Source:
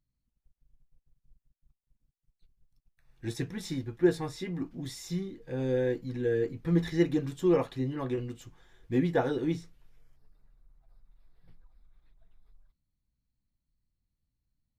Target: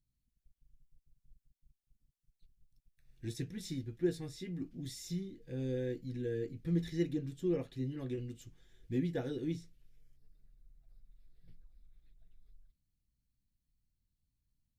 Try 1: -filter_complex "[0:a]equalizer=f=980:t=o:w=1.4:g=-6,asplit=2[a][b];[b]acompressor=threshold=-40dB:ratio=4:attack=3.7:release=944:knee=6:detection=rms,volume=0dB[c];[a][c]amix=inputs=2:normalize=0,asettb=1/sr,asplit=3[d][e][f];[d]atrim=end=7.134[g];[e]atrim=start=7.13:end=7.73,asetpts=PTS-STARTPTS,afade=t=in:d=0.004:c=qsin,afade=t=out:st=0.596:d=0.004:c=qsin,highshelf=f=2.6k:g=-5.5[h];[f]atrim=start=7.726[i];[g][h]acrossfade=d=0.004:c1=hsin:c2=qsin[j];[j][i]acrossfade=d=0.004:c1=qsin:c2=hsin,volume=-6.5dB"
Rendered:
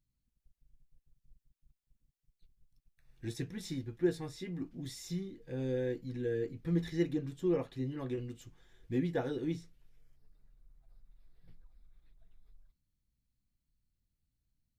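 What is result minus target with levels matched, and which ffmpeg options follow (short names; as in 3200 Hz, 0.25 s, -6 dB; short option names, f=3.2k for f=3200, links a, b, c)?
1000 Hz band +6.0 dB
-filter_complex "[0:a]equalizer=f=980:t=o:w=1.4:g=-17,asplit=2[a][b];[b]acompressor=threshold=-40dB:ratio=4:attack=3.7:release=944:knee=6:detection=rms,volume=0dB[c];[a][c]amix=inputs=2:normalize=0,asettb=1/sr,asplit=3[d][e][f];[d]atrim=end=7.134[g];[e]atrim=start=7.13:end=7.73,asetpts=PTS-STARTPTS,afade=t=in:d=0.004:c=qsin,afade=t=out:st=0.596:d=0.004:c=qsin,highshelf=f=2.6k:g=-5.5[h];[f]atrim=start=7.726[i];[g][h]acrossfade=d=0.004:c1=hsin:c2=qsin[j];[j][i]acrossfade=d=0.004:c1=qsin:c2=hsin,volume=-6.5dB"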